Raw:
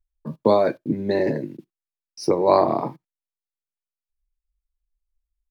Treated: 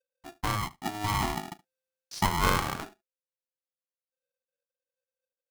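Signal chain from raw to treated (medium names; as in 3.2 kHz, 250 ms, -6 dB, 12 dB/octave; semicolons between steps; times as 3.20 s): Doppler pass-by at 1.72 s, 16 m/s, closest 4.7 m; delay 73 ms -21.5 dB; polarity switched at an audio rate 520 Hz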